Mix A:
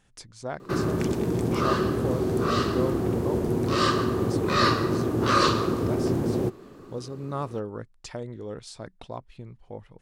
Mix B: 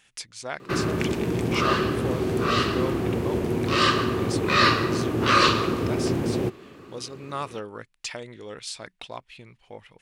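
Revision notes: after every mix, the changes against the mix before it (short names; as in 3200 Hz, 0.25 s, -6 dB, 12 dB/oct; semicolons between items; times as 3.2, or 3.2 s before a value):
speech: add tilt +2.5 dB/oct; master: add bell 2500 Hz +10 dB 1.2 oct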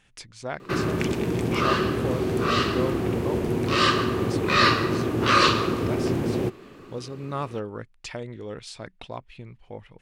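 speech: add tilt -2.5 dB/oct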